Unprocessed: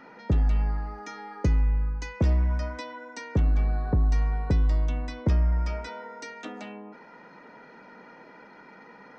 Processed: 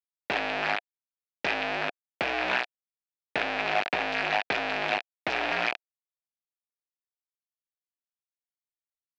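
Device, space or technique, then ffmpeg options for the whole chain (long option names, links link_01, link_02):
hand-held game console: -af "acrusher=bits=3:mix=0:aa=0.000001,highpass=480,equalizer=frequency=480:width_type=q:width=4:gain=-3,equalizer=frequency=710:width_type=q:width=4:gain=8,equalizer=frequency=1100:width_type=q:width=4:gain=-4,equalizer=frequency=1700:width_type=q:width=4:gain=6,equalizer=frequency=2500:width_type=q:width=4:gain=10,lowpass=frequency=4300:width=0.5412,lowpass=frequency=4300:width=1.3066"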